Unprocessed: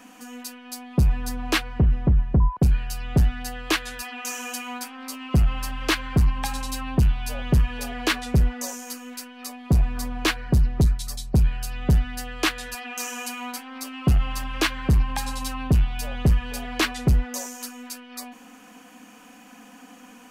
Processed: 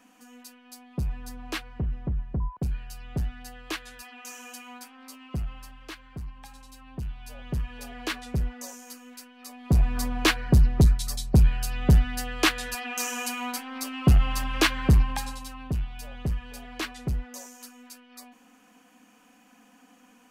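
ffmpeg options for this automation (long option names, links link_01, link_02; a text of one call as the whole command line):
ffmpeg -i in.wav -af "volume=9.5dB,afade=type=out:start_time=5.13:duration=0.76:silence=0.375837,afade=type=in:start_time=6.77:duration=1.24:silence=0.298538,afade=type=in:start_time=9.45:duration=0.52:silence=0.334965,afade=type=out:start_time=14.9:duration=0.53:silence=0.281838" out.wav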